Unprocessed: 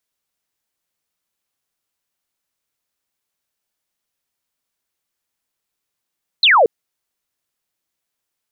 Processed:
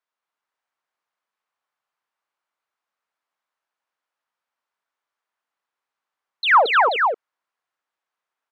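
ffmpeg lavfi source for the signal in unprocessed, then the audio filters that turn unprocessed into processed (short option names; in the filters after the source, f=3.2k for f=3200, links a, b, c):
-f lavfi -i "aevalsrc='0.398*clip(t/0.002,0,1)*clip((0.23-t)/0.002,0,1)*sin(2*PI*4300*0.23/log(410/4300)*(exp(log(410/4300)*t/0.23)-1))':d=0.23:s=44100"
-filter_complex "[0:a]asplit=2[a][b];[b]asoftclip=type=hard:threshold=-19dB,volume=-8.5dB[c];[a][c]amix=inputs=2:normalize=0,bandpass=f=1.1k:t=q:w=1.4:csg=0,aecho=1:1:49|226|302|483:0.106|0.708|0.398|0.531"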